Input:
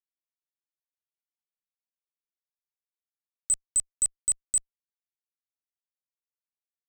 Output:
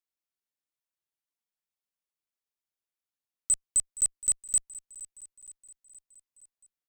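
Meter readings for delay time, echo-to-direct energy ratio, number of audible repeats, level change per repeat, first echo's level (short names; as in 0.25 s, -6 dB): 0.469 s, -16.0 dB, 4, -4.5 dB, -18.0 dB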